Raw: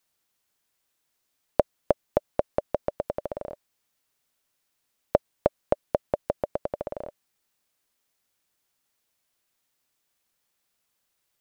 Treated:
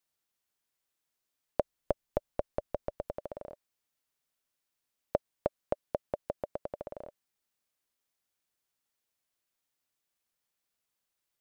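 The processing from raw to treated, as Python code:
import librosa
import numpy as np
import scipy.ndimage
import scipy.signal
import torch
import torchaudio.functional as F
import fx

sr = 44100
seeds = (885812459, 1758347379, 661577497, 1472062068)

y = fx.low_shelf(x, sr, hz=73.0, db=11.5, at=(1.6, 3.11))
y = y * librosa.db_to_amplitude(-8.5)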